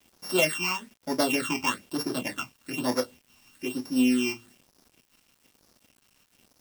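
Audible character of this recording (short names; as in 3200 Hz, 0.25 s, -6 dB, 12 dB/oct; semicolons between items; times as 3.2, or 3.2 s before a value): a buzz of ramps at a fixed pitch in blocks of 16 samples; phasing stages 8, 1.1 Hz, lowest notch 490–2800 Hz; a quantiser's noise floor 10-bit, dither none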